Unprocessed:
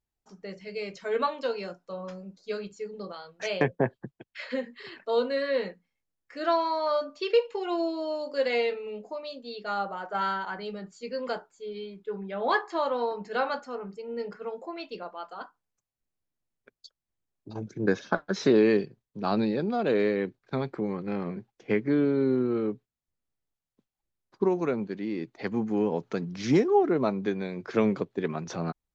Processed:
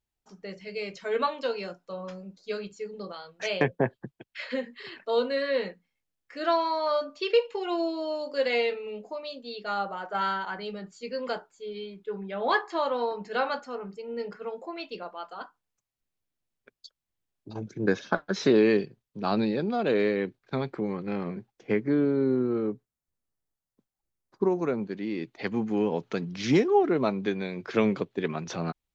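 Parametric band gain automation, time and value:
parametric band 3,000 Hz 1.2 octaves
0:21.20 +3 dB
0:22.07 −5.5 dB
0:24.54 −5.5 dB
0:25.22 +6 dB

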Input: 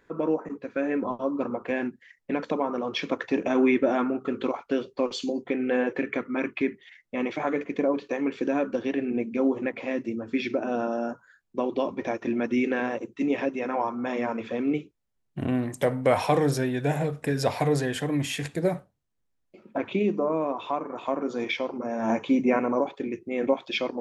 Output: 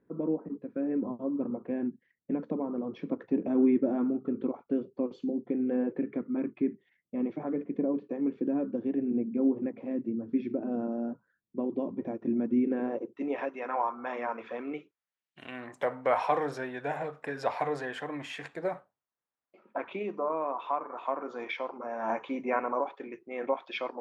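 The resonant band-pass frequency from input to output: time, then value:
resonant band-pass, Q 1.1
0:12.65 210 Hz
0:13.47 1,100 Hz
0:14.79 1,100 Hz
0:15.43 3,400 Hz
0:15.71 1,100 Hz

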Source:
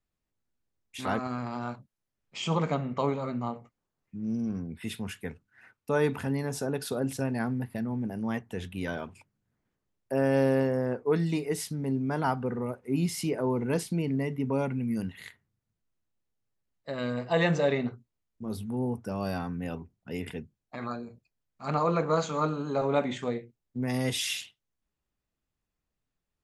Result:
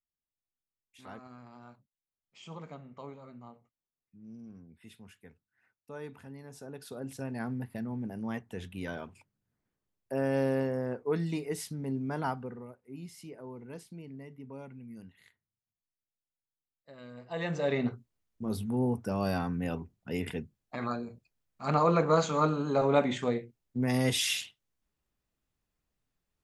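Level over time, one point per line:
0:06.38 −17 dB
0:07.54 −4.5 dB
0:12.26 −4.5 dB
0:12.79 −16.5 dB
0:17.10 −16.5 dB
0:17.60 −6 dB
0:17.87 +1.5 dB

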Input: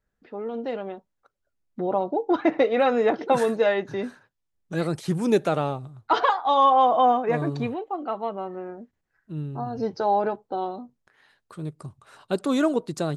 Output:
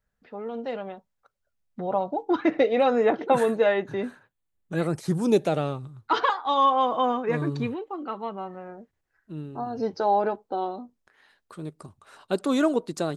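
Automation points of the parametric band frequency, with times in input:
parametric band −11 dB 0.48 octaves
0:02.05 330 Hz
0:02.83 1,600 Hz
0:03.08 5,300 Hz
0:04.78 5,300 Hz
0:05.78 690 Hz
0:08.16 690 Hz
0:09.33 130 Hz

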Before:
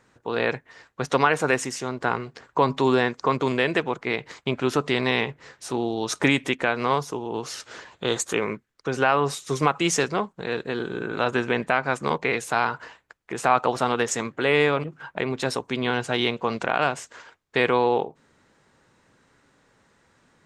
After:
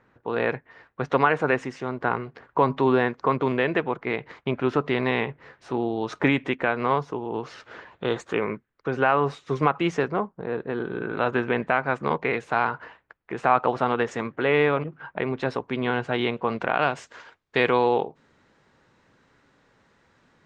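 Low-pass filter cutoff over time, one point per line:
0:09.80 2,300 Hz
0:10.44 1,100 Hz
0:11.00 2,400 Hz
0:16.57 2,400 Hz
0:17.09 5,100 Hz

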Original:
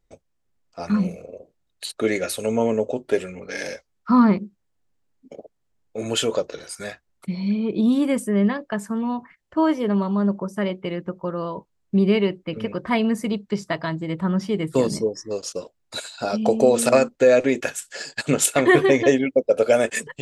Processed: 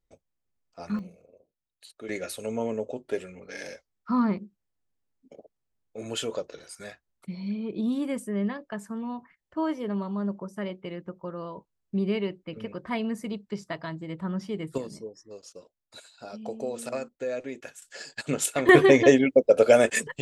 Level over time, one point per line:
−9 dB
from 0:00.99 −18.5 dB
from 0:02.09 −9 dB
from 0:14.78 −16.5 dB
from 0:17.82 −8 dB
from 0:18.69 0 dB

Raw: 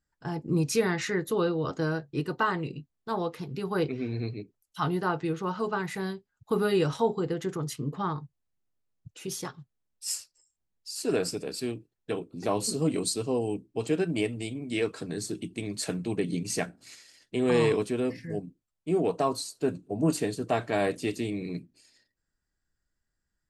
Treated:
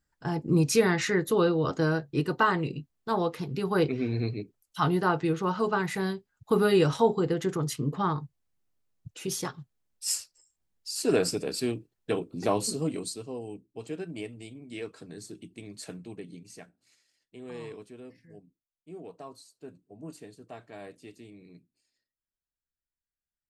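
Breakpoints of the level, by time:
0:12.43 +3 dB
0:13.27 −9.5 dB
0:15.95 −9.5 dB
0:16.52 −17.5 dB

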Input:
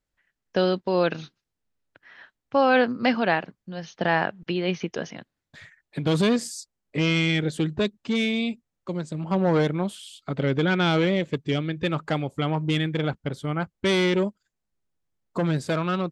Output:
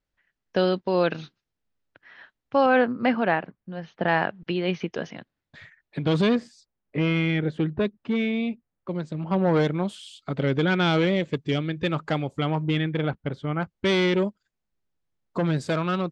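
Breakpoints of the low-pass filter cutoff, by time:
5,300 Hz
from 0:02.66 2,300 Hz
from 0:04.08 4,300 Hz
from 0:06.35 2,200 Hz
from 0:08.91 3,900 Hz
from 0:09.57 7,300 Hz
from 0:12.63 3,200 Hz
from 0:13.63 5,400 Hz
from 0:15.57 8,700 Hz

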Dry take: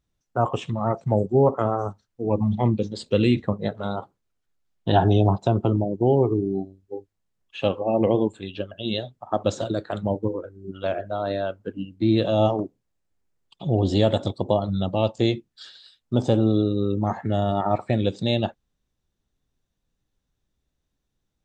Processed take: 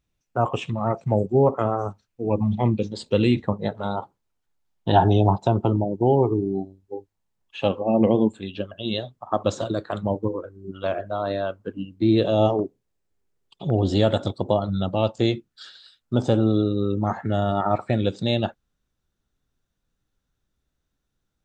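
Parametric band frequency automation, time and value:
parametric band +7 dB 0.34 octaves
2,500 Hz
from 0:02.92 890 Hz
from 0:07.68 220 Hz
from 0:08.65 1,100 Hz
from 0:11.98 410 Hz
from 0:13.70 1,400 Hz

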